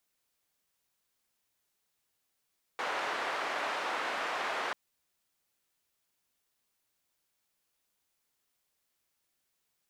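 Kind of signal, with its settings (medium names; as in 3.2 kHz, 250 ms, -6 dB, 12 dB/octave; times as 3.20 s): noise band 560–1500 Hz, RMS -34.5 dBFS 1.94 s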